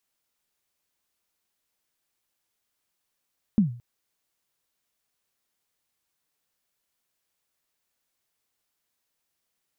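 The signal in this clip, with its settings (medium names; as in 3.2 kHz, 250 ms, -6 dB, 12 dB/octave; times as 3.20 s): kick drum length 0.22 s, from 230 Hz, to 120 Hz, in 123 ms, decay 0.42 s, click off, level -12.5 dB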